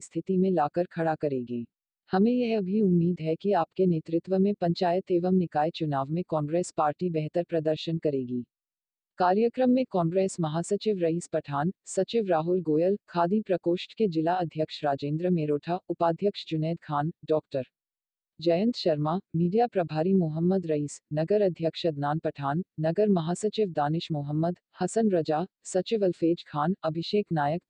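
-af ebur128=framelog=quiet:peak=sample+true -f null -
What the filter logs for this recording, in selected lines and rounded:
Integrated loudness:
  I:         -27.6 LUFS
  Threshold: -37.6 LUFS
Loudness range:
  LRA:         2.7 LU
  Threshold: -47.7 LUFS
  LRA low:   -29.1 LUFS
  LRA high:  -26.4 LUFS
Sample peak:
  Peak:      -11.2 dBFS
True peak:
  Peak:      -11.2 dBFS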